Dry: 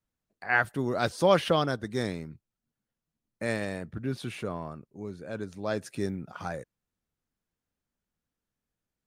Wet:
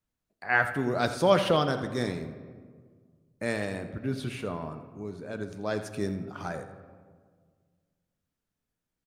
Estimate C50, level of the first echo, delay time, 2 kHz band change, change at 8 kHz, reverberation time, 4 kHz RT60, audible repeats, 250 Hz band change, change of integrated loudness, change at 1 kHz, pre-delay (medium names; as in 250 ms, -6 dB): 9.5 dB, -14.0 dB, 84 ms, +1.0 dB, 0.0 dB, 1.7 s, 0.90 s, 1, +1.0 dB, +0.5 dB, +0.5 dB, 3 ms